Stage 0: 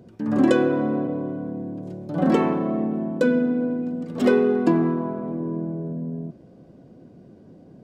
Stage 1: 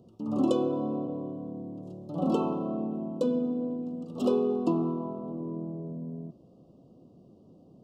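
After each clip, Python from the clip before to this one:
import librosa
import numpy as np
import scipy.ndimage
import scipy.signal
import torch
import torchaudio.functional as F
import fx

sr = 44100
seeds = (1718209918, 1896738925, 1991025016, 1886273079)

y = scipy.signal.sosfilt(scipy.signal.cheby1(4, 1.0, [1300.0, 2700.0], 'bandstop', fs=sr, output='sos'), x)
y = F.gain(torch.from_numpy(y), -7.0).numpy()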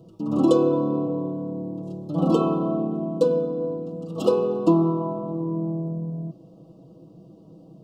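y = x + 0.98 * np.pad(x, (int(6.2 * sr / 1000.0), 0))[:len(x)]
y = F.gain(torch.from_numpy(y), 4.5).numpy()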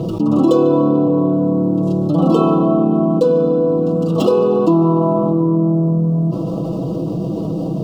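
y = scipy.ndimage.median_filter(x, 5, mode='constant')
y = fx.echo_banded(y, sr, ms=147, feedback_pct=77, hz=1200.0, wet_db=-14.0)
y = fx.env_flatten(y, sr, amount_pct=70)
y = F.gain(torch.from_numpy(y), 3.0).numpy()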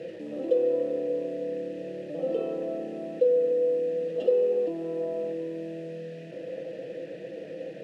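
y = fx.delta_mod(x, sr, bps=64000, step_db=-25.5)
y = fx.vowel_filter(y, sr, vowel='e')
y = F.gain(torch.from_numpy(y), -4.5).numpy()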